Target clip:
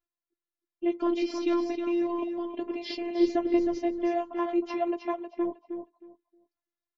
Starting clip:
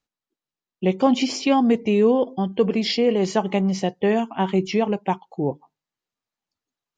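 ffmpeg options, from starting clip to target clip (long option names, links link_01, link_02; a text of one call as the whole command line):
ffmpeg -i in.wav -filter_complex "[0:a]lowpass=3300,aecho=1:1:3.1:0.84,asplit=3[link_01][link_02][link_03];[link_01]afade=type=out:start_time=3.19:duration=0.02[link_04];[link_02]asubboost=boost=11.5:cutoff=240,afade=type=in:start_time=3.19:duration=0.02,afade=type=out:start_time=3.75:duration=0.02[link_05];[link_03]afade=type=in:start_time=3.75:duration=0.02[link_06];[link_04][link_05][link_06]amix=inputs=3:normalize=0,afftfilt=real='hypot(re,im)*cos(PI*b)':imag='0':win_size=512:overlap=0.75,aecho=1:1:314|628|942:0.447|0.0893|0.0179,volume=-6.5dB" out.wav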